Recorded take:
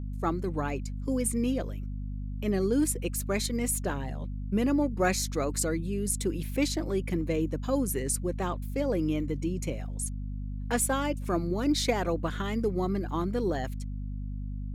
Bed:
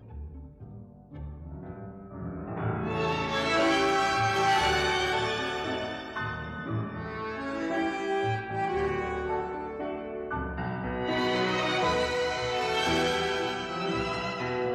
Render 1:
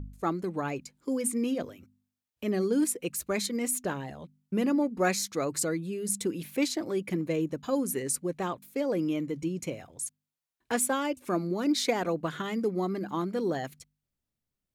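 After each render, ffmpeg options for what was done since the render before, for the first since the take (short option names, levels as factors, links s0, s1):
-af "bandreject=f=50:t=h:w=4,bandreject=f=100:t=h:w=4,bandreject=f=150:t=h:w=4,bandreject=f=200:t=h:w=4,bandreject=f=250:t=h:w=4"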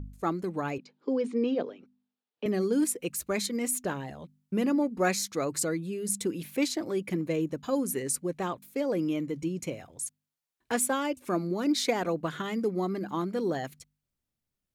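-filter_complex "[0:a]asettb=1/sr,asplit=3[s0][s1][s2];[s0]atrim=end=0.784[s3];[s1]atrim=start=0.78:end=2.46,asetpts=PTS-STARTPTS,afade=t=in:d=0.004:c=qsin,afade=t=out:st=1.676:d=0.004:c=qsin,highpass=f=180:w=0.5412,highpass=f=180:w=1.3066,equalizer=f=440:t=q:w=4:g=9,equalizer=f=820:t=q:w=4:g=5,equalizer=f=2100:t=q:w=4:g=-4,lowpass=f=4400:w=0.5412,lowpass=f=4400:w=1.3066[s4];[s2]atrim=start=2.456[s5];[s3][s4]acrossfade=d=0.004:c1=hsin:c2=qsin[s6];[s6][s5]acrossfade=d=0.004:c1=qsin:c2=hsin"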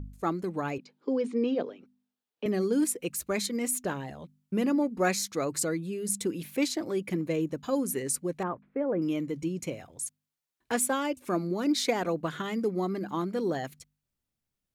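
-filter_complex "[0:a]asettb=1/sr,asplit=3[s0][s1][s2];[s0]atrim=end=8.434[s3];[s1]atrim=start=8.43:end=9.02,asetpts=PTS-STARTPTS,afade=t=in:d=0.004:c=qsin,afade=t=out:st=0.586:d=0.004:c=qsin,lowpass=f=1800:w=0.5412,lowpass=f=1800:w=1.3066[s4];[s2]atrim=start=9.016[s5];[s3][s4]acrossfade=d=0.004:c1=hsin:c2=qsin[s6];[s6][s5]acrossfade=d=0.004:c1=qsin:c2=hsin"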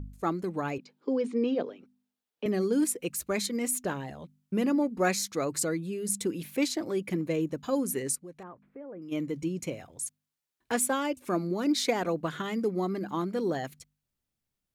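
-filter_complex "[0:a]asplit=3[s0][s1][s2];[s0]afade=t=out:st=8.14:d=0.02[s3];[s1]acompressor=threshold=0.00251:ratio=2:attack=3.2:release=140:knee=1:detection=peak,afade=t=in:st=8.14:d=0.02,afade=t=out:st=9.11:d=0.02[s4];[s2]afade=t=in:st=9.11:d=0.02[s5];[s3][s4][s5]amix=inputs=3:normalize=0"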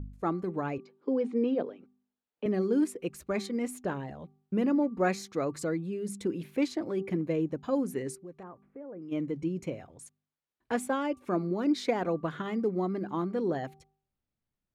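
-af "lowpass=f=1600:p=1,bandreject=f=389.1:t=h:w=4,bandreject=f=778.2:t=h:w=4,bandreject=f=1167.3:t=h:w=4"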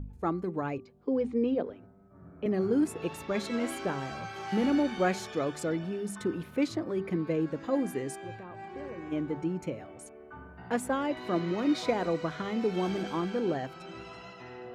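-filter_complex "[1:a]volume=0.188[s0];[0:a][s0]amix=inputs=2:normalize=0"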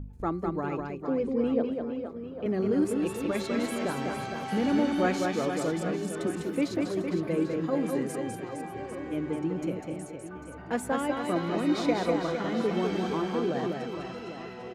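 -af "aecho=1:1:200|460|798|1237|1809:0.631|0.398|0.251|0.158|0.1"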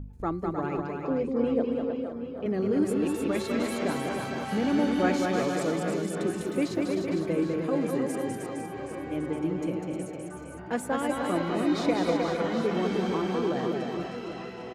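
-af "aecho=1:1:309:0.531"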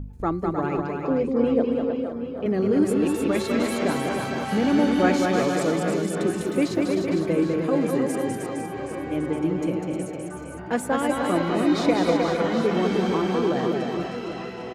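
-af "volume=1.78"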